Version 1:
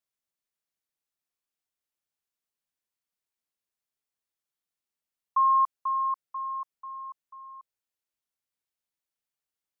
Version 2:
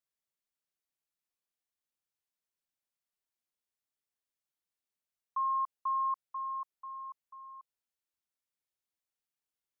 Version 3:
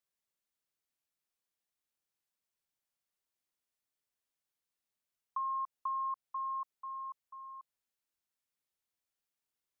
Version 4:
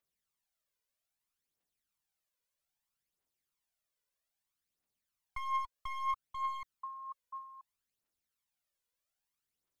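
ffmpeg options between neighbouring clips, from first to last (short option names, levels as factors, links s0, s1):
-af "alimiter=limit=0.0668:level=0:latency=1,volume=0.631"
-af "acompressor=threshold=0.0178:ratio=6,volume=1.12"
-af "aeval=exprs='clip(val(0),-1,0.0119)':c=same,aphaser=in_gain=1:out_gain=1:delay=2.1:decay=0.59:speed=0.62:type=triangular,volume=0.891"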